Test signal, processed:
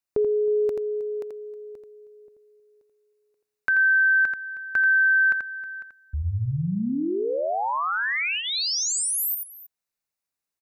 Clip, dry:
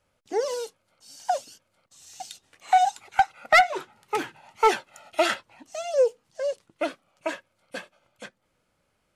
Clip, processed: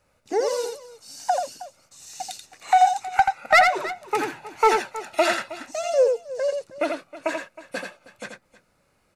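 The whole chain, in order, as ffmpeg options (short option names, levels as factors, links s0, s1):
-filter_complex "[0:a]aecho=1:1:84|316:0.531|0.112,asplit=2[s0][s1];[s1]acompressor=threshold=0.0316:ratio=6,volume=0.841[s2];[s0][s2]amix=inputs=2:normalize=0,bandreject=f=3200:w=6.5"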